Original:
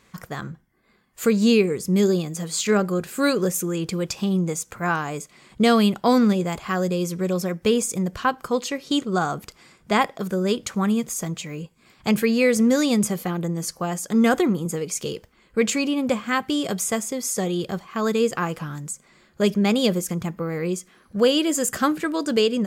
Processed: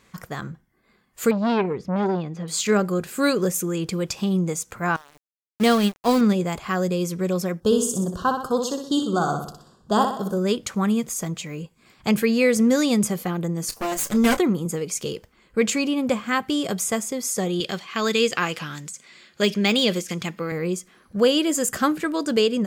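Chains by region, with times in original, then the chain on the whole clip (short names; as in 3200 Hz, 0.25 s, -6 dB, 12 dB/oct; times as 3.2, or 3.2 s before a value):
1.31–2.48 air absorption 270 m + core saturation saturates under 810 Hz
4.96–6.21 sample gate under -24 dBFS + upward expander 2.5:1, over -27 dBFS
7.6–10.38 Butterworth band-stop 2200 Hz, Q 1.2 + flutter echo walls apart 10.6 m, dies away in 0.58 s + mismatched tape noise reduction decoder only
13.69–14.37 minimum comb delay 8.8 ms + high shelf 4600 Hz +9.5 dB + doubler 29 ms -12 dB
17.6–20.52 de-esser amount 70% + weighting filter D
whole clip: dry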